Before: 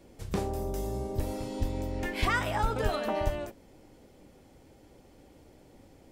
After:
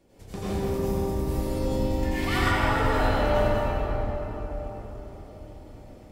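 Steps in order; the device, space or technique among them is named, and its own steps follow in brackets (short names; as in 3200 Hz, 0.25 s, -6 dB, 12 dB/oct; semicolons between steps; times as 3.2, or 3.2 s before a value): cathedral (reverb RT60 4.7 s, pre-delay 79 ms, DRR -12.5 dB); 1.07–2.5 high shelf 11000 Hz -> 5600 Hz +5 dB; gain -7 dB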